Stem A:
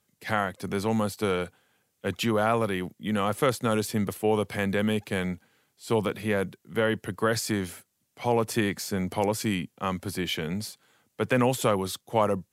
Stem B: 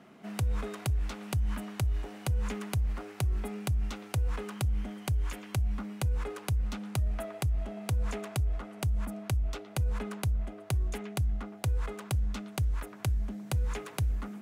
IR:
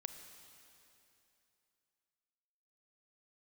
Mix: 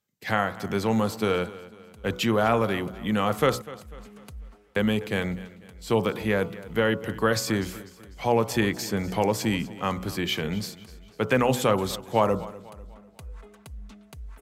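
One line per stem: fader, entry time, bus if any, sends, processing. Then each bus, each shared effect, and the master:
+2.5 dB, 0.00 s, muted 3.62–4.76 s, no send, echo send -18 dB, gate -54 dBFS, range -11 dB; peaking EQ 10 kHz -12 dB 0.24 oct; de-hum 61.68 Hz, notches 24
-13.0 dB, 1.55 s, send -15 dB, no echo send, comb 4.5 ms, depth 62%; auto duck -9 dB, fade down 0.35 s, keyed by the first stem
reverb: on, RT60 2.9 s, pre-delay 28 ms
echo: feedback delay 248 ms, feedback 43%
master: none

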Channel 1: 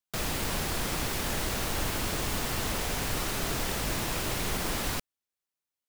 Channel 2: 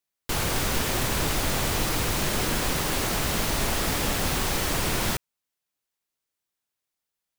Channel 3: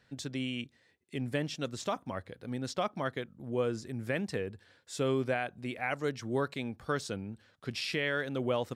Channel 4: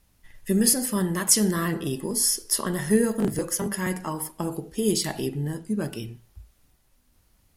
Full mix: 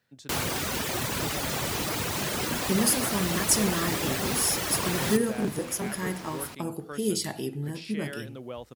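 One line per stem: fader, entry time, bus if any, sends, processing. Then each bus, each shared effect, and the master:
-9.5 dB, 1.55 s, no send, treble shelf 7.6 kHz -9 dB
-0.5 dB, 0.00 s, no send, reverb removal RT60 1 s
-8.0 dB, 0.00 s, no send, none
-4.0 dB, 2.20 s, no send, none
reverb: none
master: high-pass 90 Hz 12 dB/octave

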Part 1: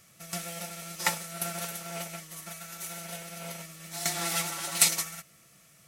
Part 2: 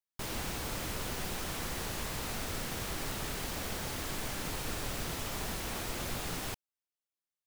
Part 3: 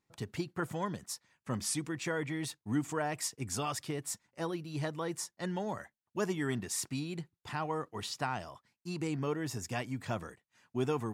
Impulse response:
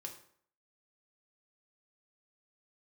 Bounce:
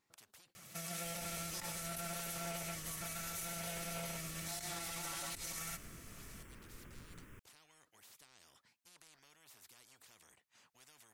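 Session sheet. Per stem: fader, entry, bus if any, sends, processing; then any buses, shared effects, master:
-1.5 dB, 0.55 s, no send, compressor with a negative ratio -36 dBFS, ratio -1
-14.0 dB, 0.85 s, no send, treble shelf 2.4 kHz -11 dB; static phaser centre 1.8 kHz, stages 4
-14.0 dB, 0.00 s, no send, compression 1.5:1, threshold -40 dBFS, peak gain reduction 5 dB; bass shelf 390 Hz -8 dB; spectrum-flattening compressor 10:1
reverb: none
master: peak limiter -33.5 dBFS, peak gain reduction 10.5 dB

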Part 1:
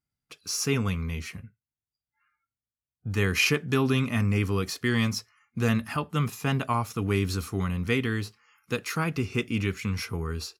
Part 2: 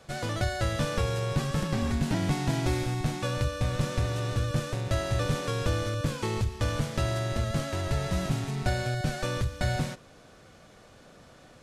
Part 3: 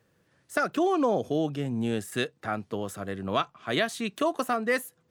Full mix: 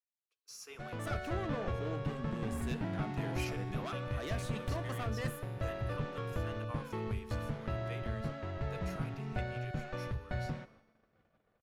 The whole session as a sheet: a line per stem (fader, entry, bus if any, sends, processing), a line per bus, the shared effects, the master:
-12.5 dB, 0.00 s, no send, high-pass 420 Hz 24 dB/octave
-1.5 dB, 0.70 s, no send, low-pass 2.3 kHz 12 dB/octave
-3.0 dB, 0.50 s, no send, saturation -26.5 dBFS, distortion -9 dB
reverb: none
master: gate -53 dBFS, range -18 dB; feedback comb 220 Hz, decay 1.1 s, mix 60%

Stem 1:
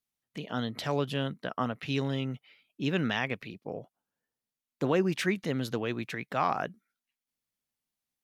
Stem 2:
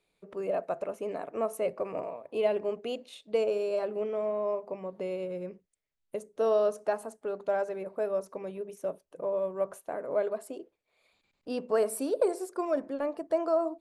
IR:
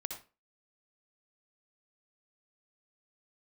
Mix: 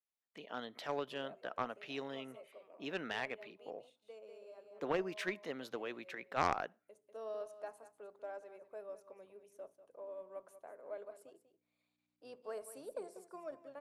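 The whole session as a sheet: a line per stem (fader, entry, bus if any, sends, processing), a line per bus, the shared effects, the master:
-3.5 dB, 0.00 s, send -22.5 dB, no echo send, treble shelf 3.1 kHz -8 dB
-13.0 dB, 0.75 s, send -22.5 dB, echo send -13 dB, octave divider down 1 oct, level -5 dB; hum 60 Hz, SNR 23 dB; auto duck -9 dB, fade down 1.95 s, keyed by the first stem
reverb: on, RT60 0.30 s, pre-delay 56 ms
echo: delay 193 ms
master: high-pass 420 Hz 12 dB/octave; Chebyshev shaper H 3 -19 dB, 4 -12 dB, 6 -17 dB, 8 -39 dB, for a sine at -18.5 dBFS

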